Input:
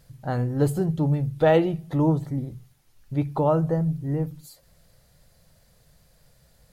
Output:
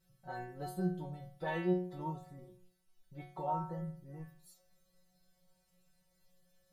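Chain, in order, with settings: dynamic EQ 780 Hz, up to +5 dB, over -31 dBFS, Q 0.85; metallic resonator 180 Hz, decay 0.57 s, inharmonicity 0.002; gain +1 dB

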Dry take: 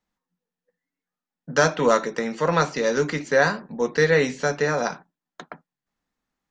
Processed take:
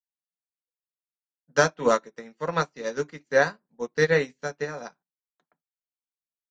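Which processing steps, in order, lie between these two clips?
upward expander 2.5:1, over -38 dBFS

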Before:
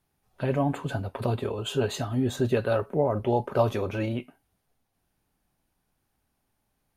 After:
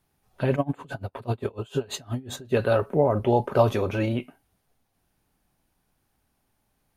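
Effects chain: 0.55–2.58 dB-linear tremolo 10 Hz -> 4.2 Hz, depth 26 dB; gain +3.5 dB

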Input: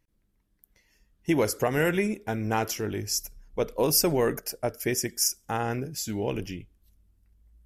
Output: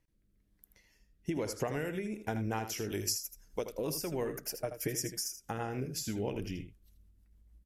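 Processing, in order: 1.3–1.79 LPF 9300 Hz 12 dB/oct; 2.89–3.72 tone controls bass -5 dB, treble +11 dB; 4.59–5.28 comb 6.5 ms, depth 64%; compressor 12:1, threshold -30 dBFS, peak gain reduction 16 dB; rotary speaker horn 1.1 Hz, later 6.3 Hz, at 1.95; echo 80 ms -10 dB

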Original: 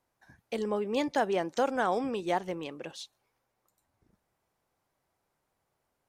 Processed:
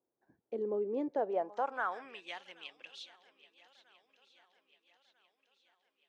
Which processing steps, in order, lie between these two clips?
swung echo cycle 1.295 s, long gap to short 1.5:1, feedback 46%, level -17.5 dB; band-pass sweep 370 Hz -> 3000 Hz, 1.03–2.36

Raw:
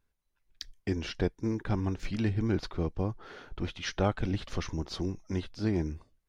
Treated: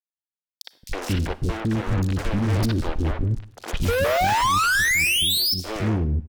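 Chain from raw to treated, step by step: low shelf 200 Hz +9.5 dB; 2.53–3.02 comb 3.3 ms, depth 75%; dynamic EQ 1100 Hz, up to -3 dB, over -48 dBFS, Q 0.89; in parallel at -2 dB: compressor 6:1, threshold -33 dBFS, peak gain reduction 14.5 dB; on the sum: rotary speaker horn 6.7 Hz; 3.82–5.54 painted sound rise 450–5400 Hz -18 dBFS; fuzz box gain 37 dB, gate -36 dBFS; three bands offset in time highs, mids, lows 60/220 ms, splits 390/4100 Hz; reverb RT60 0.70 s, pre-delay 33 ms, DRR 17 dB; gain -5.5 dB

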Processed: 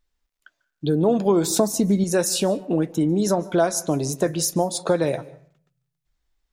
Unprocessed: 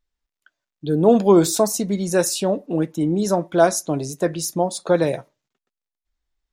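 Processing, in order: 1.5–2.04 low shelf 430 Hz +9 dB; compressor 3:1, threshold -23 dBFS, peak gain reduction 11.5 dB; on a send: reverb RT60 0.50 s, pre-delay 0.143 s, DRR 20.5 dB; on the sum: gain +4.5 dB

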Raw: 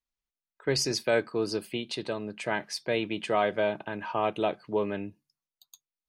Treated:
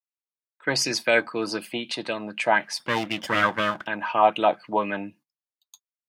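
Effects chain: 2.79–3.87 minimum comb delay 0.59 ms; gate -55 dBFS, range -20 dB; HPF 180 Hz 12 dB/oct; bell 410 Hz -11.5 dB 0.2 oct; LFO bell 4 Hz 750–2800 Hz +11 dB; gain +4 dB

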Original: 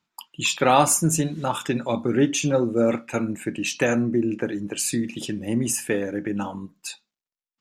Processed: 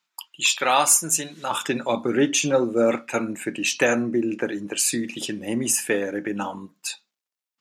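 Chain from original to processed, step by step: HPF 1500 Hz 6 dB/oct, from 1.51 s 420 Hz; gain +4 dB

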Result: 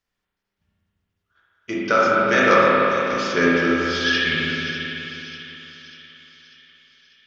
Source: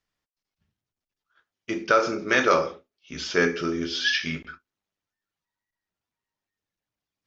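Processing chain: thin delay 0.594 s, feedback 54%, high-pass 2700 Hz, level -10.5 dB; spring tank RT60 3.4 s, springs 35/50 ms, chirp 50 ms, DRR -6 dB

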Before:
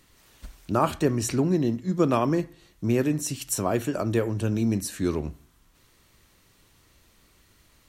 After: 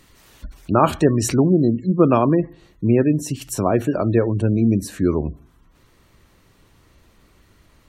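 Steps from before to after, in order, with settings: spectral gate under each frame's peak -30 dB strong; high shelf 2300 Hz -2 dB, from 2.14 s -9.5 dB; gain +7.5 dB

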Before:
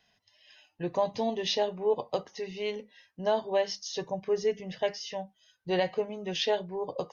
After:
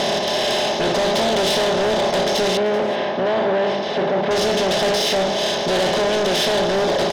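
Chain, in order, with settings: per-bin compression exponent 0.2; in parallel at 0 dB: limiter -16.5 dBFS, peak gain reduction 10.5 dB; on the sum: notch comb 470 Hz; soft clip -22 dBFS, distortion -8 dB; 2.57–4.31 BPF 110–2100 Hz; on a send: echo 0.384 s -18 dB; on the sum: gain +6.5 dB

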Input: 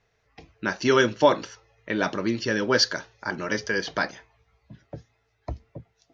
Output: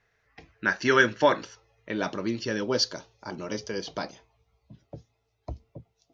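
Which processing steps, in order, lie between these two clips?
bell 1700 Hz +8.5 dB 0.72 oct, from 1.43 s -3.5 dB, from 2.63 s -12.5 dB; gain -3.5 dB

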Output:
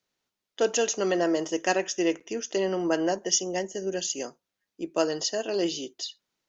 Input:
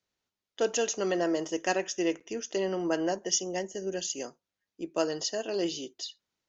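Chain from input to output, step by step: bell 63 Hz -13.5 dB 0.76 oct; gain +3.5 dB

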